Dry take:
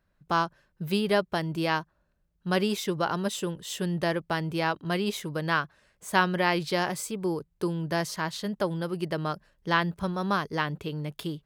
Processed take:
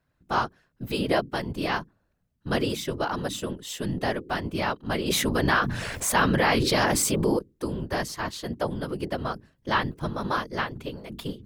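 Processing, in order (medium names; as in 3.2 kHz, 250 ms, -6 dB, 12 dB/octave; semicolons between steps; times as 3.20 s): hum notches 50/100/150/200/250/300/350 Hz; whisper effect; 5.10–7.39 s: level flattener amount 70%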